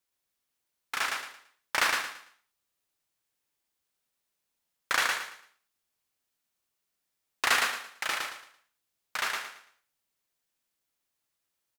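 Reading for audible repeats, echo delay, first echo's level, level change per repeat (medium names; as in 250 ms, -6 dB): 3, 112 ms, -3.5 dB, -11.0 dB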